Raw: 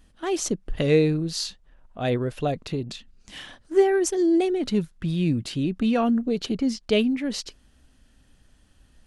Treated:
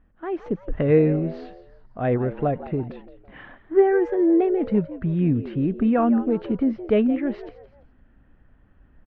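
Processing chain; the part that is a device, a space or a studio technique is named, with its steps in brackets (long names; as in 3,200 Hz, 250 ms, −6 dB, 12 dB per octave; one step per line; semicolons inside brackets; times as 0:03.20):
0:02.60–0:03.40: low-pass that shuts in the quiet parts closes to 2,200 Hz, open at −25 dBFS
echo with shifted repeats 169 ms, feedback 38%, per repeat +93 Hz, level −15 dB
action camera in a waterproof case (low-pass filter 1,900 Hz 24 dB per octave; automatic gain control gain up to 5.5 dB; level −3 dB; AAC 64 kbit/s 48,000 Hz)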